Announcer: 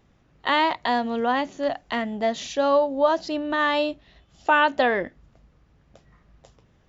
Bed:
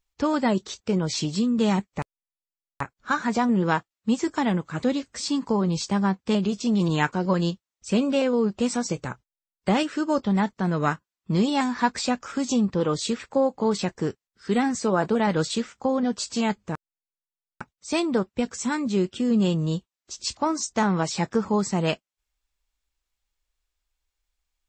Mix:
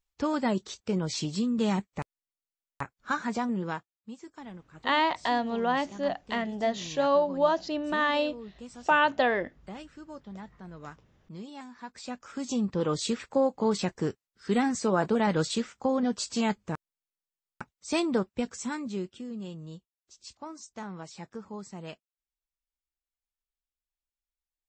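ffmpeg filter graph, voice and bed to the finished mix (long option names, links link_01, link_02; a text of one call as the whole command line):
ffmpeg -i stem1.wav -i stem2.wav -filter_complex "[0:a]adelay=4400,volume=-4dB[link_01];[1:a]volume=12.5dB,afade=type=out:start_time=3.11:duration=1:silence=0.16788,afade=type=in:start_time=11.88:duration=1.14:silence=0.133352,afade=type=out:start_time=18.08:duration=1.25:silence=0.188365[link_02];[link_01][link_02]amix=inputs=2:normalize=0" out.wav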